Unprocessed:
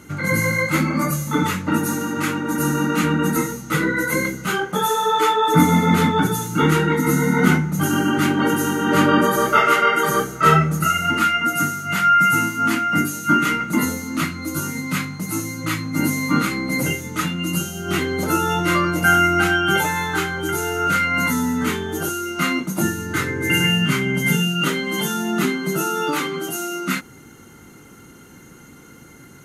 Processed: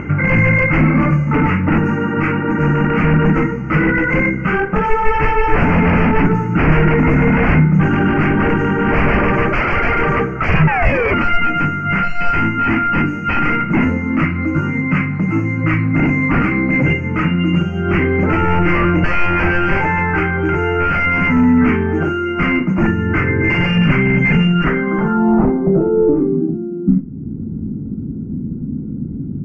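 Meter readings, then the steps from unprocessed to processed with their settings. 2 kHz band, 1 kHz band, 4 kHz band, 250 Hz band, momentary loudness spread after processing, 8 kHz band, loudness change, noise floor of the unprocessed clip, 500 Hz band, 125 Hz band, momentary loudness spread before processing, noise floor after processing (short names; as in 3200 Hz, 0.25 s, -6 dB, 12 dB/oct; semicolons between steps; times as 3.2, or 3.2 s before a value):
+4.0 dB, +1.0 dB, -6.0 dB, +6.0 dB, 5 LU, under -25 dB, +4.0 dB, -44 dBFS, +5.5 dB, +8.0 dB, 9 LU, -24 dBFS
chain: notches 60/120/180/240/300 Hz; painted sound fall, 10.67–11.14, 380–910 Hz -16 dBFS; LPF 11000 Hz 12 dB/oct; low shelf 120 Hz -7.5 dB; in parallel at +1 dB: upward compressor, threshold -20 dBFS; on the sum: wavefolder -10.5 dBFS; low-pass sweep 2400 Hz -> 230 Hz, 24.48–26.59; Butterworth band-stop 3700 Hz, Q 1.6; RIAA curve playback; Schroeder reverb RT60 0.49 s, combs from 25 ms, DRR 14.5 dB; gain -3 dB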